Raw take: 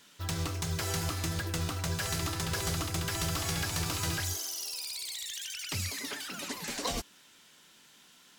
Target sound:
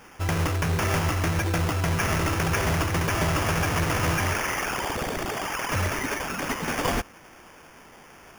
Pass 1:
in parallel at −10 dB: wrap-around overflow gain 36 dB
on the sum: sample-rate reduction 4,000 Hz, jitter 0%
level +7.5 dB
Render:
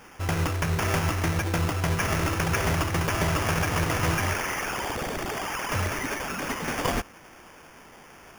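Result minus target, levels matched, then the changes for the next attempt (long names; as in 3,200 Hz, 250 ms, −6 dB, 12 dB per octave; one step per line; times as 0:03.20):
wrap-around overflow: distortion +23 dB
change: wrap-around overflow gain 28.5 dB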